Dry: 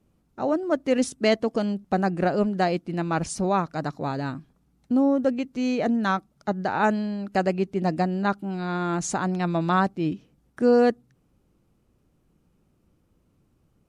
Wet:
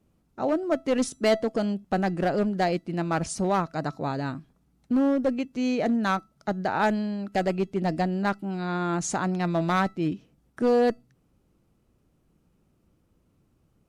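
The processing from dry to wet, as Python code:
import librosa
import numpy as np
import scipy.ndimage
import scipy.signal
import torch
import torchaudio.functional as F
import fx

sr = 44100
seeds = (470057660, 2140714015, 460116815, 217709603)

y = fx.clip_asym(x, sr, top_db=-17.5, bottom_db=-14.0)
y = fx.comb_fb(y, sr, f0_hz=660.0, decay_s=0.27, harmonics='all', damping=0.0, mix_pct=50)
y = y * 10.0 ** (5.0 / 20.0)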